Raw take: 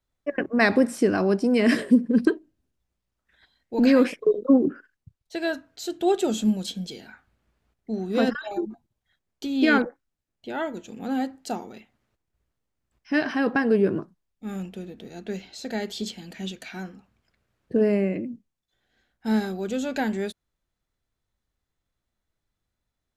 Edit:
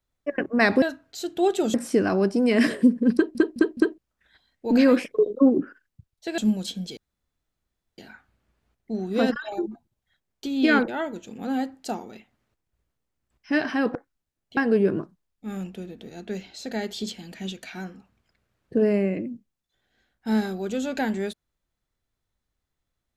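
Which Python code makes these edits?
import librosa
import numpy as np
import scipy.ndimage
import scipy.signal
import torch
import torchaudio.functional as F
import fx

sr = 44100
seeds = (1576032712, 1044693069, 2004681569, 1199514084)

y = fx.edit(x, sr, fx.stutter_over(start_s=2.22, slice_s=0.21, count=4),
    fx.move(start_s=5.46, length_s=0.92, to_s=0.82),
    fx.insert_room_tone(at_s=6.97, length_s=1.01),
    fx.move(start_s=9.87, length_s=0.62, to_s=13.56), tone=tone)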